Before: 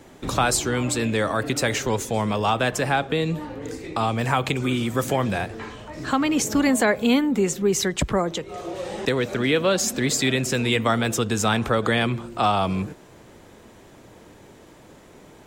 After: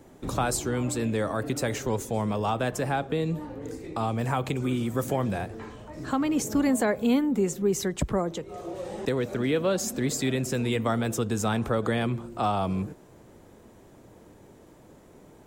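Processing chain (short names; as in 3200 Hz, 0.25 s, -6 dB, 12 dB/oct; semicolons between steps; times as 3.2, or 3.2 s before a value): bell 3000 Hz -8 dB 2.8 oct; gain -3 dB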